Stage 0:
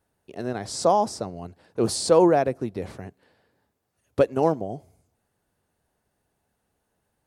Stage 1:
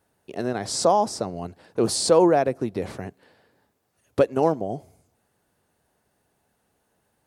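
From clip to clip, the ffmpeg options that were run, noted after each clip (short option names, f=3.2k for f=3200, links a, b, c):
-filter_complex "[0:a]asplit=2[a][b];[b]acompressor=threshold=-28dB:ratio=6,volume=1.5dB[c];[a][c]amix=inputs=2:normalize=0,lowshelf=f=68:g=-10,volume=-1.5dB"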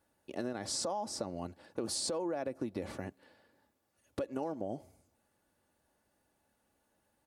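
-af "aecho=1:1:3.5:0.4,alimiter=limit=-15dB:level=0:latency=1:release=79,acompressor=threshold=-26dB:ratio=6,volume=-6.5dB"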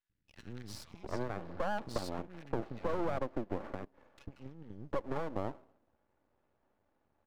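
-filter_complex "[0:a]adynamicsmooth=sensitivity=3.5:basefreq=1.7k,acrossover=split=200|2000[a][b][c];[a]adelay=90[d];[b]adelay=750[e];[d][e][c]amix=inputs=3:normalize=0,aeval=exprs='max(val(0),0)':c=same,volume=6.5dB"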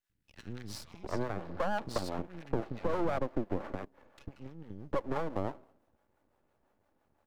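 -filter_complex "[0:a]acrossover=split=480[a][b];[a]aeval=exprs='val(0)*(1-0.5/2+0.5/2*cos(2*PI*5.9*n/s))':c=same[c];[b]aeval=exprs='val(0)*(1-0.5/2-0.5/2*cos(2*PI*5.9*n/s))':c=same[d];[c][d]amix=inputs=2:normalize=0,volume=5dB"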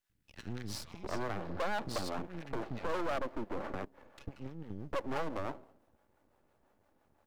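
-af "asoftclip=type=hard:threshold=-33dB,volume=2.5dB"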